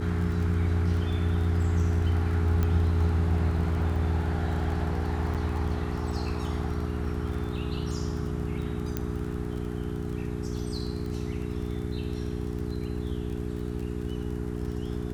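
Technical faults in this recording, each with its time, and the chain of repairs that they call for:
crackle 23 per s -35 dBFS
hum 60 Hz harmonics 7 -33 dBFS
2.63 s: pop -16 dBFS
5.34–5.35 s: dropout 7.5 ms
8.97 s: pop -15 dBFS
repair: de-click; de-hum 60 Hz, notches 7; interpolate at 5.34 s, 7.5 ms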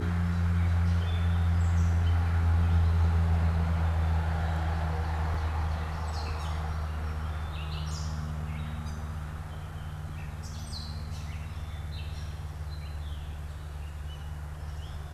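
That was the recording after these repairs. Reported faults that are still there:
2.63 s: pop

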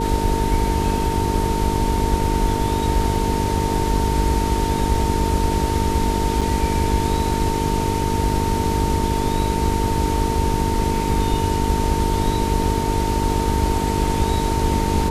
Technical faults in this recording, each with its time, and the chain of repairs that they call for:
buzz 50 Hz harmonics 9 -24 dBFS
whine 910 Hz -24 dBFS
6.41–6.42 s: dropout 5.2 ms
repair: de-hum 50 Hz, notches 9; band-stop 910 Hz, Q 30; interpolate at 6.41 s, 5.2 ms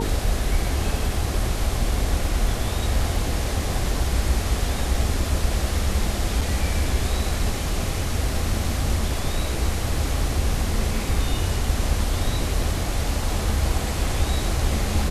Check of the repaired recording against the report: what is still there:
nothing left

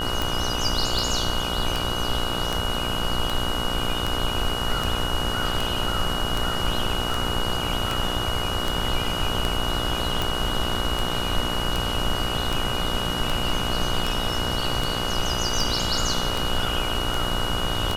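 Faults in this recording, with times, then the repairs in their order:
buzz 60 Hz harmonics 26 -30 dBFS
tick 78 rpm
whine 2.9 kHz -29 dBFS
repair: de-click; de-hum 60 Hz, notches 26; band-stop 2.9 kHz, Q 30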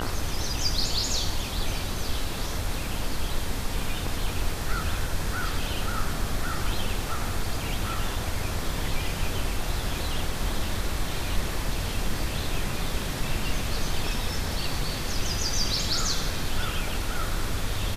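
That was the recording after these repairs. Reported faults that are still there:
nothing left

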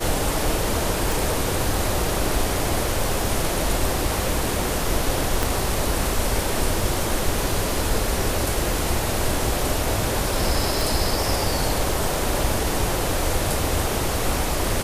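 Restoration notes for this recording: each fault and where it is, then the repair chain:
1.12 s: pop
5.43 s: pop
10.81 s: pop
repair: de-click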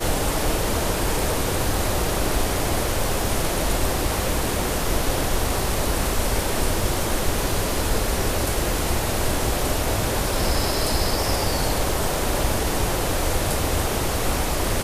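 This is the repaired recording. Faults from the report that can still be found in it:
5.43 s: pop

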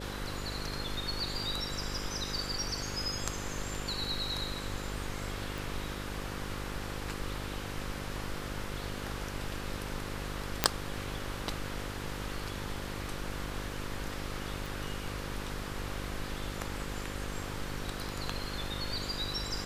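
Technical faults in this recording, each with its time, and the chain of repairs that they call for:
buzz 50 Hz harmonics 11 -41 dBFS
5.58 s: pop
10.64 s: pop -5 dBFS
14.66 s: pop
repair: de-click; de-hum 50 Hz, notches 11

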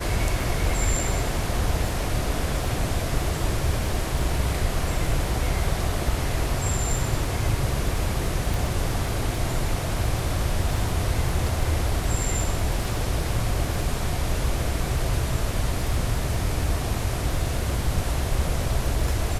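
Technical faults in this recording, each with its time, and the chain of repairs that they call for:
crackle 29 per s -31 dBFS
8.54 s: pop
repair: de-click

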